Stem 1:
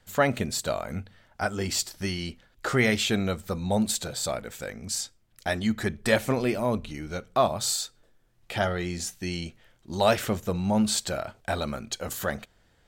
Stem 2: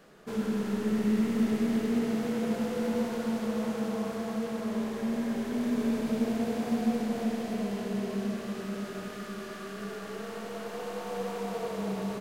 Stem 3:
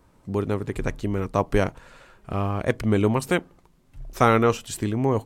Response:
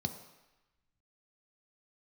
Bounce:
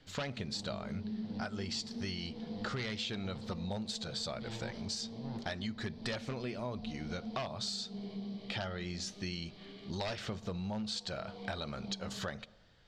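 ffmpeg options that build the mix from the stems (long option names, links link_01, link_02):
-filter_complex "[0:a]aeval=exprs='0.158*(abs(mod(val(0)/0.158+3,4)-2)-1)':channel_layout=same,volume=-3dB,asplit=3[link_01][link_02][link_03];[link_02]volume=-20.5dB[link_04];[1:a]volume=2dB,asplit=2[link_05][link_06];[link_06]volume=-21dB[link_07];[2:a]aeval=exprs='abs(val(0))':channel_layout=same,aeval=exprs='val(0)*pow(10,-24*if(lt(mod(-1.5*n/s,1),2*abs(-1.5)/1000),1-mod(-1.5*n/s,1)/(2*abs(-1.5)/1000),(mod(-1.5*n/s,1)-2*abs(-1.5)/1000)/(1-2*abs(-1.5)/1000))/20)':channel_layout=same,adelay=200,volume=-1dB,asplit=2[link_08][link_09];[link_09]volume=-16dB[link_10];[link_03]apad=whole_len=538186[link_11];[link_05][link_11]sidechaincompress=threshold=-46dB:ratio=8:attack=16:release=204[link_12];[link_12][link_08]amix=inputs=2:normalize=0,asplit=3[link_13][link_14][link_15];[link_13]bandpass=frequency=270:width_type=q:width=8,volume=0dB[link_16];[link_14]bandpass=frequency=2290:width_type=q:width=8,volume=-6dB[link_17];[link_15]bandpass=frequency=3010:width_type=q:width=8,volume=-9dB[link_18];[link_16][link_17][link_18]amix=inputs=3:normalize=0,acompressor=threshold=-46dB:ratio=6,volume=0dB[link_19];[3:a]atrim=start_sample=2205[link_20];[link_04][link_07][link_10]amix=inputs=3:normalize=0[link_21];[link_21][link_20]afir=irnorm=-1:irlink=0[link_22];[link_01][link_19][link_22]amix=inputs=3:normalize=0,lowpass=frequency=4500:width_type=q:width=2.4,acompressor=threshold=-36dB:ratio=6"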